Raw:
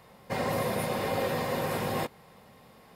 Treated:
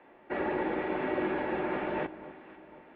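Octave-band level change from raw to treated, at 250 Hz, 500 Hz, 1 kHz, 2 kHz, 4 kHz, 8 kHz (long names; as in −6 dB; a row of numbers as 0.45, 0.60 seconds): +1.5 dB, −1.5 dB, −2.5 dB, −0.5 dB, −11.5 dB, below −40 dB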